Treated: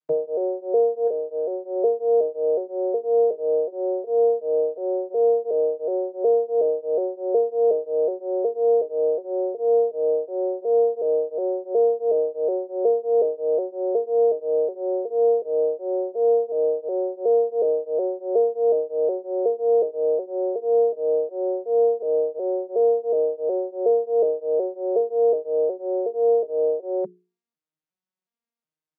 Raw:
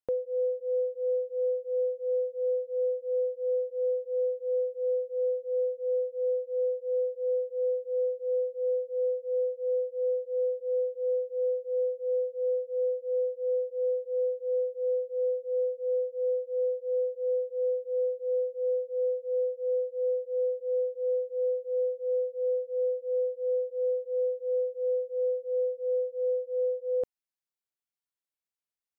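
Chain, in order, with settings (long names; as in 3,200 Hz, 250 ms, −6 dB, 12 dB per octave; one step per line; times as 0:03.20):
vocoder with an arpeggio as carrier minor triad, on D#3, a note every 367 ms
mains-hum notches 60/120/180/240/300/360/420 Hz
0:01.07–0:01.76: downward compressor, threshold −30 dBFS, peak gain reduction 6.5 dB
level +7.5 dB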